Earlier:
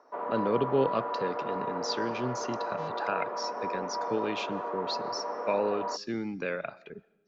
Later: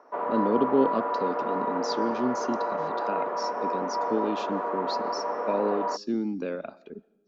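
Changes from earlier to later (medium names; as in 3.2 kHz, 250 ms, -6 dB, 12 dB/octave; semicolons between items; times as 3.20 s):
speech: add graphic EQ 125/250/2000 Hz -11/+11/-12 dB; background +5.0 dB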